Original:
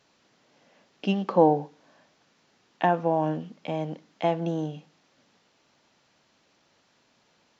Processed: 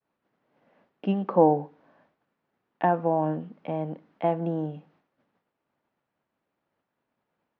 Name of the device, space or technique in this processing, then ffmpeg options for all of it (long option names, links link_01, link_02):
hearing-loss simulation: -af "lowpass=1700,agate=range=-33dB:threshold=-59dB:ratio=3:detection=peak"